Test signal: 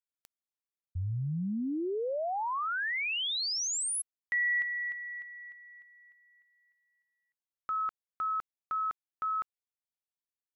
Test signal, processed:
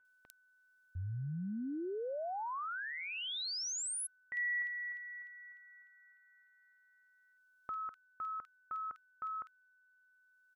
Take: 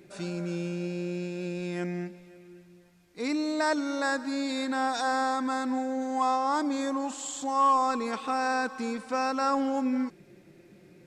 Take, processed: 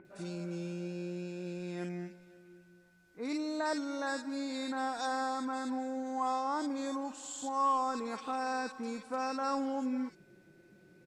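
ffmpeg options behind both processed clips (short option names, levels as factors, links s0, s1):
-filter_complex "[0:a]acrossover=split=2100[s0][s1];[s1]adelay=50[s2];[s0][s2]amix=inputs=2:normalize=0,acompressor=mode=upward:threshold=0.00178:ratio=1.5:attack=74:release=687:knee=2.83:detection=peak,aeval=exprs='val(0)+0.000891*sin(2*PI*1500*n/s)':c=same,volume=0.473"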